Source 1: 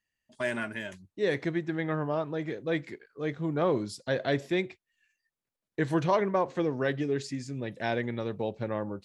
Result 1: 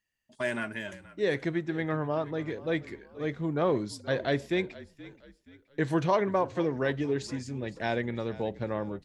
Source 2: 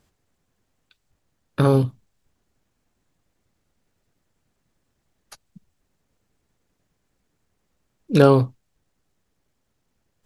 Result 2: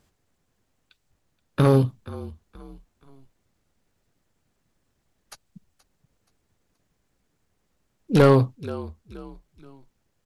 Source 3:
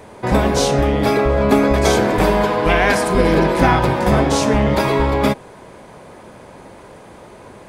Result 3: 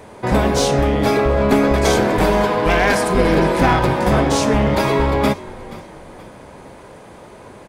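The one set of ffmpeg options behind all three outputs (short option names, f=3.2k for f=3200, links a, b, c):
-filter_complex "[0:a]asplit=4[a][b][c][d];[b]adelay=476,afreqshift=-45,volume=-18.5dB[e];[c]adelay=952,afreqshift=-90,volume=-26.5dB[f];[d]adelay=1428,afreqshift=-135,volume=-34.4dB[g];[a][e][f][g]amix=inputs=4:normalize=0,aeval=exprs='clip(val(0),-1,0.299)':c=same"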